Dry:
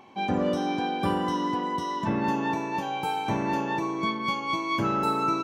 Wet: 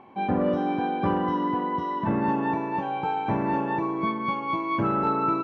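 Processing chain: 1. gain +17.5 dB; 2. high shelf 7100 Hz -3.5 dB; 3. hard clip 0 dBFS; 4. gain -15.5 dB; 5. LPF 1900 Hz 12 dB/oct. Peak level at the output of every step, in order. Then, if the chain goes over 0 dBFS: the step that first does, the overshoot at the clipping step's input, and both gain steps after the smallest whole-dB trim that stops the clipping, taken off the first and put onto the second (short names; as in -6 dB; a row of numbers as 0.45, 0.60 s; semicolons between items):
+4.0, +4.0, 0.0, -15.5, -15.0 dBFS; step 1, 4.0 dB; step 1 +13.5 dB, step 4 -11.5 dB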